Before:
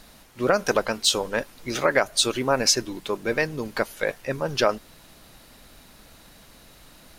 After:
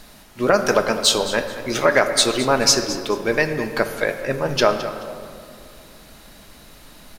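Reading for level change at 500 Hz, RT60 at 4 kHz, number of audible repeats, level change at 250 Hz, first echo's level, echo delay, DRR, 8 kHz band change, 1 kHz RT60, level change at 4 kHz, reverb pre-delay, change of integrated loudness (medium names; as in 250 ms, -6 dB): +5.0 dB, 1.2 s, 2, +5.5 dB, -14.5 dB, 215 ms, 6.0 dB, +4.5 dB, 2.1 s, +4.5 dB, 3 ms, +4.5 dB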